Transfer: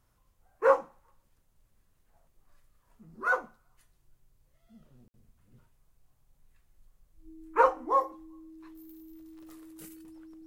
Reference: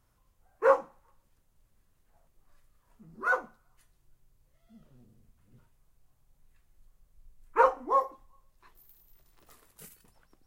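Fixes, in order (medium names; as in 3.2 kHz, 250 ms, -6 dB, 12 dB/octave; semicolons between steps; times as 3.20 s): band-stop 320 Hz, Q 30; room tone fill 5.08–5.14 s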